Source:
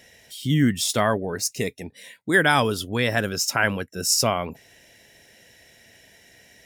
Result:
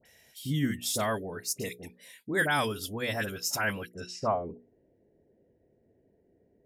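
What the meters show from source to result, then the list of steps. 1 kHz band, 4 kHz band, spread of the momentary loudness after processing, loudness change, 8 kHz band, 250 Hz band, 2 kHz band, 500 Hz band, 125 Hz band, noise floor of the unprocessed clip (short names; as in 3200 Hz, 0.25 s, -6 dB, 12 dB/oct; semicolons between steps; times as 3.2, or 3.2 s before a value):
-7.5 dB, -10.0 dB, 14 LU, -9.0 dB, -10.0 dB, -9.5 dB, -8.5 dB, -8.0 dB, -9.0 dB, -55 dBFS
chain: notches 60/120/180/240/300/360/420/480 Hz; dispersion highs, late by 55 ms, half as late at 1500 Hz; low-pass sweep 13000 Hz -> 390 Hz, 3.91–4.44; gain -8.5 dB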